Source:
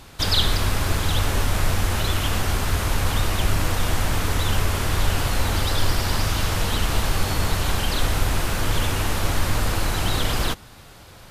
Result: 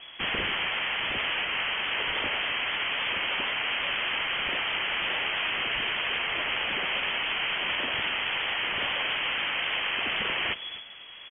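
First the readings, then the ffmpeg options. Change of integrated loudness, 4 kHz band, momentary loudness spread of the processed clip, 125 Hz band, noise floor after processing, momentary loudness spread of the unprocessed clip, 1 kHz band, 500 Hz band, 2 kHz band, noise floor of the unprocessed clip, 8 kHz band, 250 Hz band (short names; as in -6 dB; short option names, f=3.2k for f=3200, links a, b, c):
-3.5 dB, -0.5 dB, 1 LU, -27.0 dB, -44 dBFS, 1 LU, -5.5 dB, -8.5 dB, +2.5 dB, -45 dBFS, under -40 dB, -14.5 dB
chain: -filter_complex "[0:a]lowpass=f=2.9k:t=q:w=0.5098,lowpass=f=2.9k:t=q:w=0.6013,lowpass=f=2.9k:t=q:w=0.9,lowpass=f=2.9k:t=q:w=2.563,afreqshift=-3400,asplit=2[a][b];[b]aecho=0:1:258:0.141[c];[a][c]amix=inputs=2:normalize=0,afftfilt=real='re*lt(hypot(re,im),0.2)':imag='im*lt(hypot(re,im),0.2)':win_size=1024:overlap=0.75" -ar 32000 -c:a wmav2 -b:a 64k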